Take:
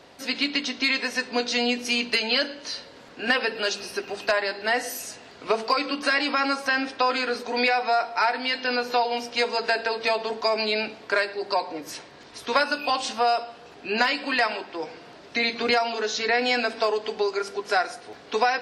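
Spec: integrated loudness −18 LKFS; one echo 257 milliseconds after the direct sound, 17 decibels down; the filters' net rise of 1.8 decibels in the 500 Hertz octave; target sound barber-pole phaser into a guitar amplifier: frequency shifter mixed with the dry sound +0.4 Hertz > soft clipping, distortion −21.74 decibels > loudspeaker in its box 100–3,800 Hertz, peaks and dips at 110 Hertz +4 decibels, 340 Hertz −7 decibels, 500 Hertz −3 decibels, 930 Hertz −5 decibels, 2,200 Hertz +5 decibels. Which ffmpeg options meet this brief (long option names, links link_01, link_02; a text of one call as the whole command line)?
ffmpeg -i in.wav -filter_complex "[0:a]equalizer=frequency=500:width_type=o:gain=5.5,aecho=1:1:257:0.141,asplit=2[link_01][link_02];[link_02]afreqshift=0.4[link_03];[link_01][link_03]amix=inputs=2:normalize=1,asoftclip=threshold=-13dB,highpass=100,equalizer=frequency=110:width_type=q:width=4:gain=4,equalizer=frequency=340:width_type=q:width=4:gain=-7,equalizer=frequency=500:width_type=q:width=4:gain=-3,equalizer=frequency=930:width_type=q:width=4:gain=-5,equalizer=frequency=2200:width_type=q:width=4:gain=5,lowpass=frequency=3800:width=0.5412,lowpass=frequency=3800:width=1.3066,volume=9.5dB" out.wav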